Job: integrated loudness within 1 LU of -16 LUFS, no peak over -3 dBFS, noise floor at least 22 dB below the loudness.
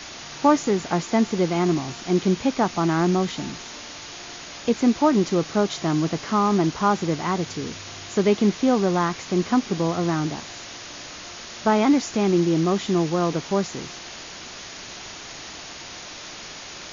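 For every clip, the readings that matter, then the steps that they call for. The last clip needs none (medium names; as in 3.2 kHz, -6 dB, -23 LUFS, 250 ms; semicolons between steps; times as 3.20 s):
noise floor -39 dBFS; noise floor target -45 dBFS; loudness -22.5 LUFS; peak level -6.5 dBFS; loudness target -16.0 LUFS
-> noise reduction 6 dB, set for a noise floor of -39 dBFS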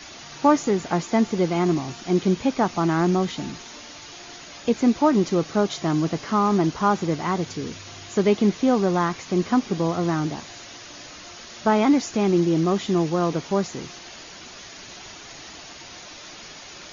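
noise floor -42 dBFS; noise floor target -45 dBFS
-> noise reduction 6 dB, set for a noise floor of -42 dBFS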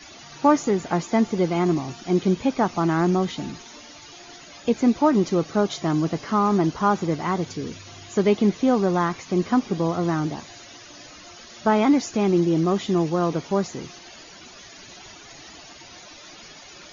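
noise floor -45 dBFS; loudness -22.5 LUFS; peak level -6.5 dBFS; loudness target -16.0 LUFS
-> trim +6.5 dB; peak limiter -3 dBFS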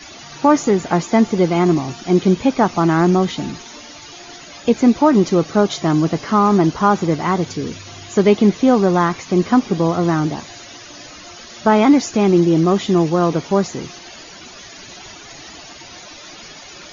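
loudness -16.0 LUFS; peak level -3.0 dBFS; noise floor -38 dBFS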